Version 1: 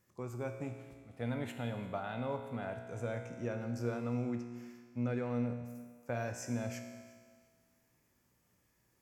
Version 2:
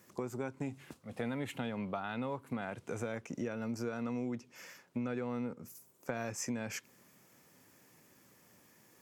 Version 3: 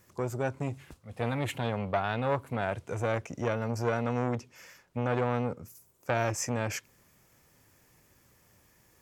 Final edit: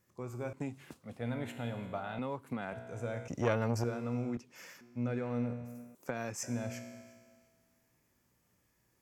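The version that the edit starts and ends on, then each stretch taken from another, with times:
1
0.53–1.17 from 2
2.19–2.73 from 2
3.28–3.84 from 3
4.37–4.81 from 2
5.95–6.43 from 2

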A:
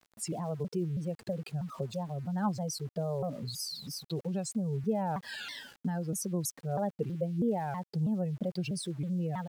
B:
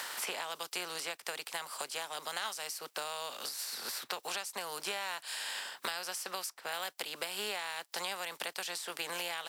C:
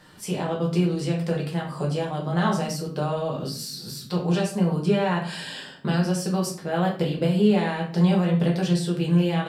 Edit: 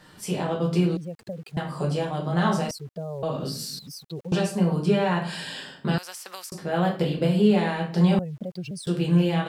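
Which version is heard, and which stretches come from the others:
C
0.97–1.57 from A
2.71–3.23 from A
3.79–4.32 from A
5.98–6.52 from B
8.19–8.87 from A

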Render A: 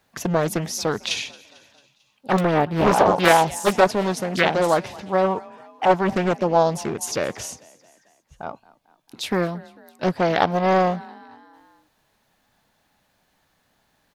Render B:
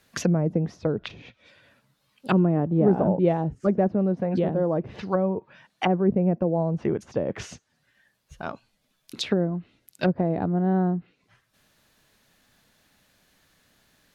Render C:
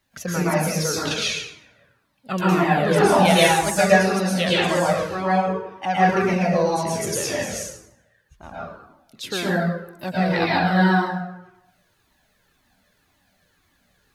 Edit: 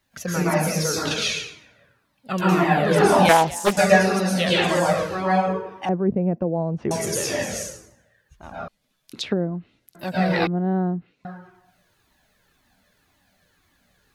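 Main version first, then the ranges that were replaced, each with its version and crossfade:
C
3.29–3.77 from A
5.89–6.91 from B
8.68–9.95 from B
10.47–11.25 from B

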